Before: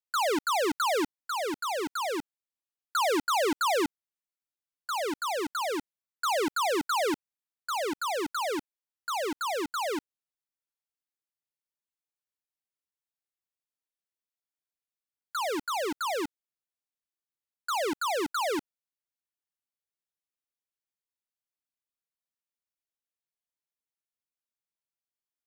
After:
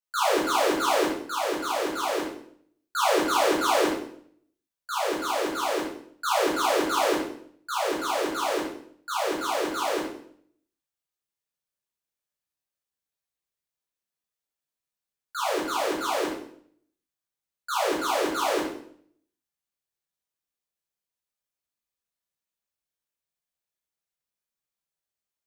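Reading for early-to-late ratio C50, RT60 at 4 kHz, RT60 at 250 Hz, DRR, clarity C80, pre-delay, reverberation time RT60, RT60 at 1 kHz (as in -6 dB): 2.5 dB, 0.55 s, 0.75 s, -7.5 dB, 7.0 dB, 9 ms, 0.65 s, 0.60 s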